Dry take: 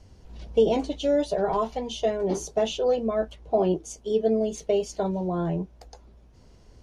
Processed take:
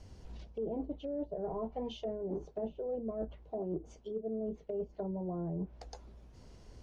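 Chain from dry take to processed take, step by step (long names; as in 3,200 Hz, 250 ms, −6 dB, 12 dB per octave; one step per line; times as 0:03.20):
treble cut that deepens with the level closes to 550 Hz, closed at −23 dBFS
reversed playback
downward compressor 10 to 1, threshold −33 dBFS, peak gain reduction 17 dB
reversed playback
level −1.5 dB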